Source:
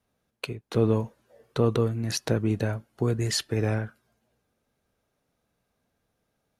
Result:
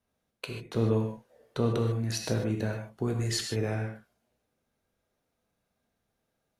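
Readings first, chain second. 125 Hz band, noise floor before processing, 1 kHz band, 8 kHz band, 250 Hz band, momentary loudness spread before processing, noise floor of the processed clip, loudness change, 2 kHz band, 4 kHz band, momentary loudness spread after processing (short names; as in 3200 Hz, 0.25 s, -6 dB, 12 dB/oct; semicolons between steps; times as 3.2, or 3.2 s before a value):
-3.0 dB, -78 dBFS, -3.5 dB, -3.0 dB, -3.5 dB, 13 LU, -81 dBFS, -3.5 dB, -3.0 dB, -3.0 dB, 12 LU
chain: non-linear reverb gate 0.17 s flat, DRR 2.5 dB; gain -5 dB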